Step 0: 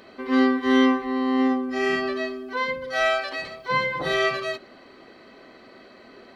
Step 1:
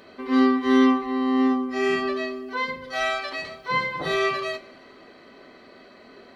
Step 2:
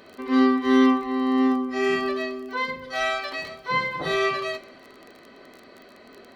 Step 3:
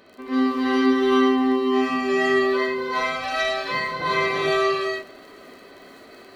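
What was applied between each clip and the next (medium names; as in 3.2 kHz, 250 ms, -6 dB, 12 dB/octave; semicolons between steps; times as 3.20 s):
reverberation, pre-delay 3 ms, DRR 8.5 dB; trim -1 dB
crackle 24 per s -35 dBFS
gated-style reverb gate 470 ms rising, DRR -6 dB; trim -3.5 dB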